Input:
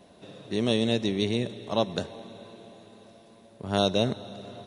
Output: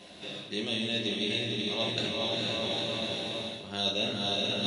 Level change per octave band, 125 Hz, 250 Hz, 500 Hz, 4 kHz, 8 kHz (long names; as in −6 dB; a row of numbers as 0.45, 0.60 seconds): −6.5, −5.5, −5.0, +5.0, +0.5 decibels